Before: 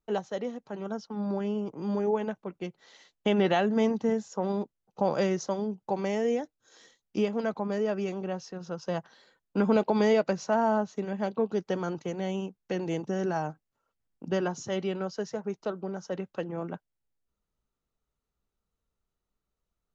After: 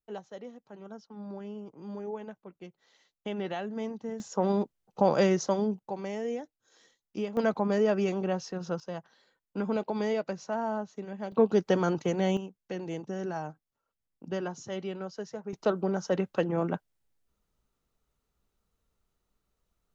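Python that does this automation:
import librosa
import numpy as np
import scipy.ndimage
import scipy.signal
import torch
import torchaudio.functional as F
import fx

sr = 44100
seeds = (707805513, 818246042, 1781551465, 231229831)

y = fx.gain(x, sr, db=fx.steps((0.0, -10.0), (4.2, 3.0), (5.79, -6.0), (7.37, 3.5), (8.8, -6.5), (11.32, 5.0), (12.37, -5.0), (15.53, 6.0)))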